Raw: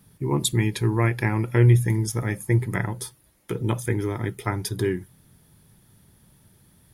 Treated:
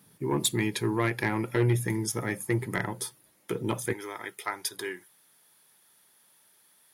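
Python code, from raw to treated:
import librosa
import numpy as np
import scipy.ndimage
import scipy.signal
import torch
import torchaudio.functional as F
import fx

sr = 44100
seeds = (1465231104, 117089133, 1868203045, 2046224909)

y = fx.bessel_highpass(x, sr, hz=fx.steps((0.0, 230.0), (3.92, 900.0)), order=2)
y = 10.0 ** (-16.0 / 20.0) * np.tanh(y / 10.0 ** (-16.0 / 20.0))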